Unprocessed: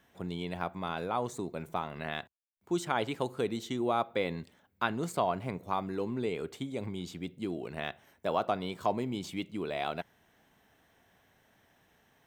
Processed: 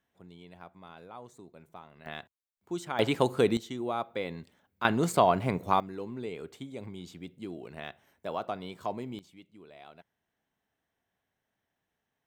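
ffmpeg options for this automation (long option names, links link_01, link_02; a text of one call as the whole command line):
ffmpeg -i in.wav -af "asetnsamples=nb_out_samples=441:pad=0,asendcmd='2.06 volume volume -4dB;2.99 volume volume 7.5dB;3.57 volume volume -3dB;4.85 volume volume 7dB;5.8 volume volume -4.5dB;9.19 volume volume -17dB',volume=-14dB" out.wav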